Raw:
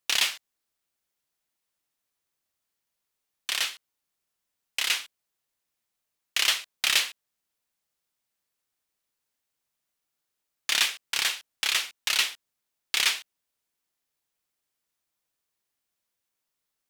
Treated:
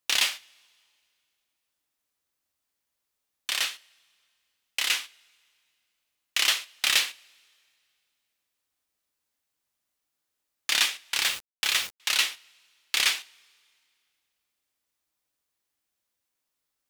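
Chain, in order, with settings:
coupled-rooms reverb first 0.23 s, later 2.3 s, from −28 dB, DRR 10.5 dB
0:11.22–0:12.00: bit-depth reduction 6 bits, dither none

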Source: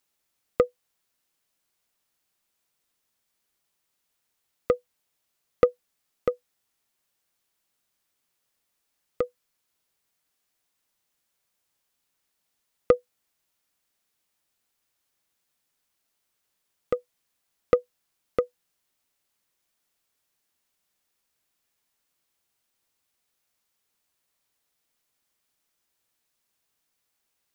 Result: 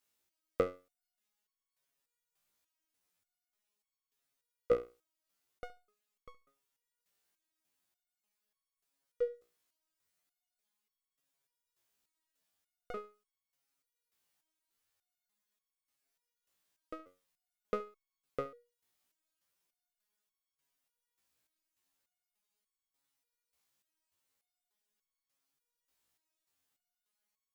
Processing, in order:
flutter between parallel walls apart 11.9 metres, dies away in 0.21 s
step-sequenced resonator 3.4 Hz 60–1,100 Hz
level +3.5 dB

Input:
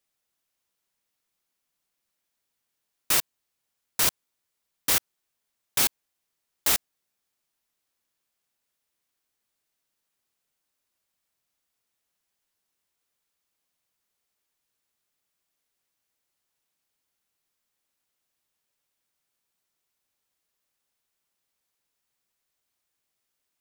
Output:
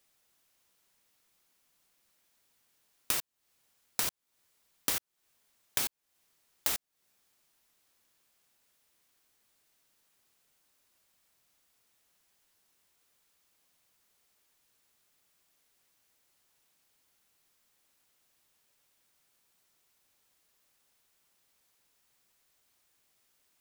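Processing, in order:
downward compressor 12 to 1, threshold −37 dBFS, peak gain reduction 19 dB
level +8 dB

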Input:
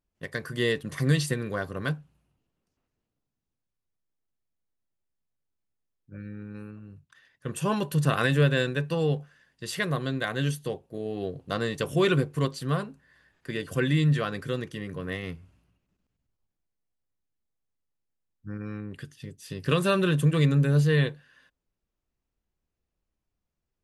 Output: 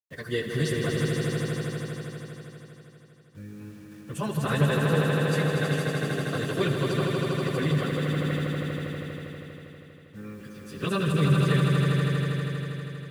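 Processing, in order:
time stretch by phase vocoder 0.55×
bit reduction 10 bits
echo that builds up and dies away 80 ms, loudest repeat 5, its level −6 dB

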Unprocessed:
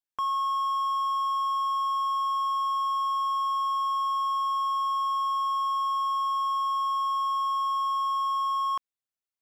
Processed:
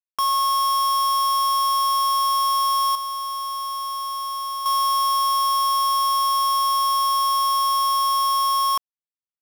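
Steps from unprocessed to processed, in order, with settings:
bit reduction 5 bits
0:02.95–0:04.66: hard clipping −31.5 dBFS, distortion −11 dB
level +6 dB

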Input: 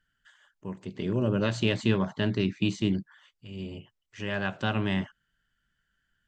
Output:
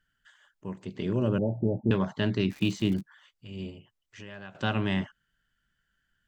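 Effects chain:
0:01.38–0:01.91: Chebyshev low-pass filter 860 Hz, order 8
0:02.49–0:03.00: surface crackle 320 per second → 69 per second −36 dBFS
0:03.70–0:04.55: downward compressor 2.5 to 1, threshold −47 dBFS, peak gain reduction 14.5 dB

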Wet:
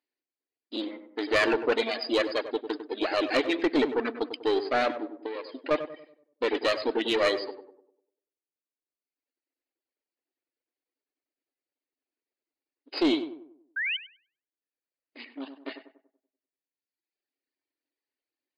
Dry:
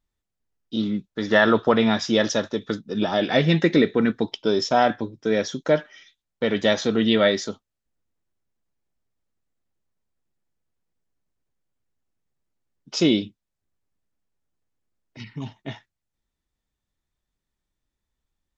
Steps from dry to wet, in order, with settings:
lower of the sound and its delayed copy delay 0.44 ms
reverb reduction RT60 1.5 s
0:05.19–0:05.71: downward compressor 12 to 1, threshold −30 dBFS, peak gain reduction 13 dB
linear-phase brick-wall band-pass 250–5,000 Hz
soft clipping −17 dBFS, distortion −14 dB
0:13.76–0:13.97: sound drawn into the spectrogram rise 1,500–3,200 Hz −29 dBFS
on a send: tape delay 97 ms, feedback 49%, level −7.5 dB, low-pass 1,100 Hz

